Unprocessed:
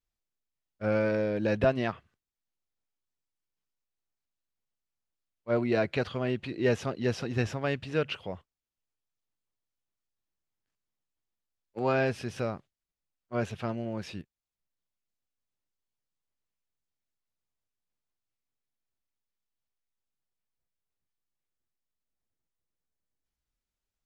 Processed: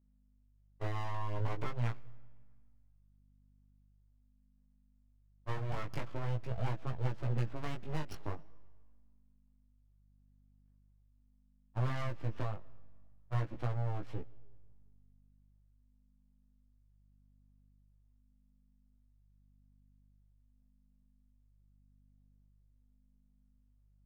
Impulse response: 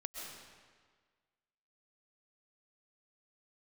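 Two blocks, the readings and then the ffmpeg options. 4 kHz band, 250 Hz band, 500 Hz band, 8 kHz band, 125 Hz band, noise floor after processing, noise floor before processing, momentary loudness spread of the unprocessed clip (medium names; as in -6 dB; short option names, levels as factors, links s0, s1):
-11.5 dB, -14.0 dB, -16.5 dB, under -10 dB, -0.5 dB, -68 dBFS, under -85 dBFS, 15 LU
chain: -filter_complex "[0:a]adynamicsmooth=sensitivity=2.5:basefreq=1100,aeval=exprs='abs(val(0))':c=same,acompressor=threshold=0.0112:ratio=6,equalizer=f=120:w=2.3:g=10.5,asplit=2[s0][s1];[1:a]atrim=start_sample=2205[s2];[s1][s2]afir=irnorm=-1:irlink=0,volume=0.106[s3];[s0][s3]amix=inputs=2:normalize=0,aeval=exprs='val(0)+0.000282*(sin(2*PI*50*n/s)+sin(2*PI*2*50*n/s)/2+sin(2*PI*3*50*n/s)/3+sin(2*PI*4*50*n/s)/4+sin(2*PI*5*50*n/s)/5)':c=same,flanger=delay=15.5:depth=4.3:speed=0.43,volume=2"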